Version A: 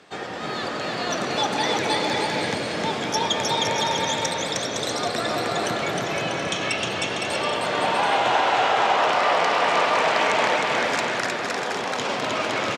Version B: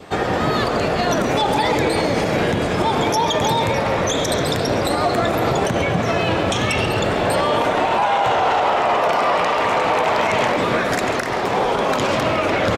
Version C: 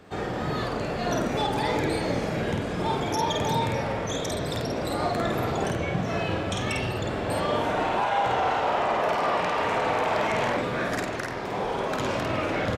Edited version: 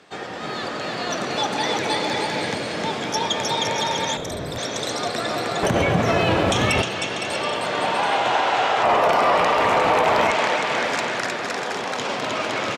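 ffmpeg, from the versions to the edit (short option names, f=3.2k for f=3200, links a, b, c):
-filter_complex "[1:a]asplit=2[a][b];[0:a]asplit=4[c][d][e][f];[c]atrim=end=4.172[g];[2:a]atrim=start=4.168:end=4.582[h];[d]atrim=start=4.578:end=5.632[i];[a]atrim=start=5.628:end=6.822[j];[e]atrim=start=6.818:end=8.832[k];[b]atrim=start=8.828:end=10.312[l];[f]atrim=start=10.308[m];[g][h]acrossfade=d=0.004:c1=hsin:c2=hsin[n];[n][i]acrossfade=d=0.004:c1=hsin:c2=hsin[o];[o][j]acrossfade=d=0.004:c1=hsin:c2=hsin[p];[p][k]acrossfade=d=0.004:c1=hsin:c2=hsin[q];[q][l]acrossfade=d=0.004:c1=hsin:c2=hsin[r];[r][m]acrossfade=d=0.004:c1=hsin:c2=hsin"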